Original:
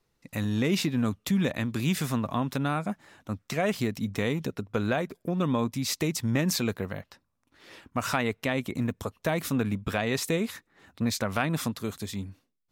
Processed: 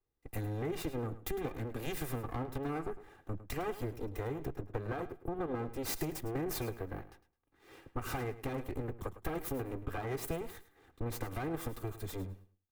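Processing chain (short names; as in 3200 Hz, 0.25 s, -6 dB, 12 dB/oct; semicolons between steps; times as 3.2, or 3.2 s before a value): minimum comb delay 2.5 ms; bell 5100 Hz -13 dB 2.4 oct; compressor 6:1, threshold -39 dBFS, peak gain reduction 13 dB; on a send: feedback echo 0.106 s, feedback 25%, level -13.5 dB; on the sum: three-band expander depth 40%; gain +4.5 dB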